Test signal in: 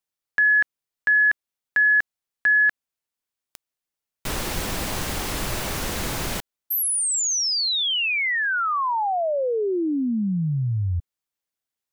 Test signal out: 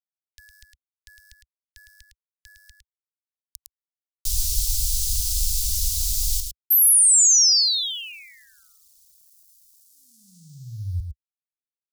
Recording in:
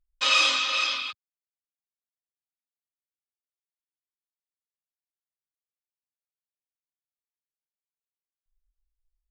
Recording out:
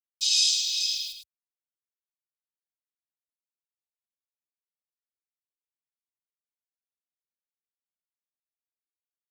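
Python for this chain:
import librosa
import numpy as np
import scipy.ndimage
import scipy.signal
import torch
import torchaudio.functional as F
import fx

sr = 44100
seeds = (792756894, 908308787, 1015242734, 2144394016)

y = np.where(np.abs(x) >= 10.0 ** (-45.0 / 20.0), x, 0.0)
y = scipy.signal.sosfilt(scipy.signal.cheby2(4, 80, [300.0, 1100.0], 'bandstop', fs=sr, output='sos'), y)
y = y + 10.0 ** (-6.5 / 20.0) * np.pad(y, (int(108 * sr / 1000.0), 0))[:len(y)]
y = y * librosa.db_to_amplitude(7.5)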